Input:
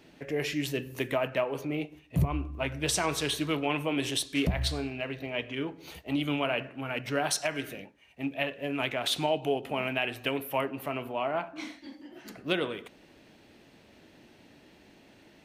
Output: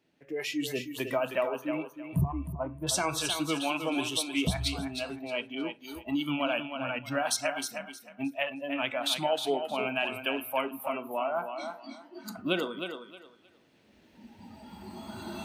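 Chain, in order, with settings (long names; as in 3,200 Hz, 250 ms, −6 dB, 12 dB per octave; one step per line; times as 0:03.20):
camcorder AGC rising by 8.1 dB per second
0:02.21–0:02.87: low-pass filter 1,100 Hz 12 dB per octave
noise reduction from a noise print of the clip's start 17 dB
high-pass filter 78 Hz
feedback echo with a high-pass in the loop 312 ms, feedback 23%, high-pass 230 Hz, level −7 dB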